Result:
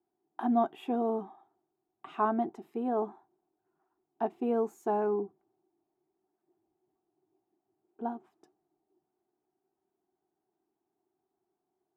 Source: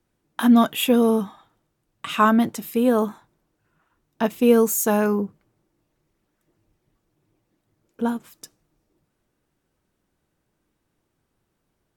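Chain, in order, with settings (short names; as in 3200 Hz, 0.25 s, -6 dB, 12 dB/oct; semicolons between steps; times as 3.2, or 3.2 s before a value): double band-pass 530 Hz, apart 0.97 oct; gain +1 dB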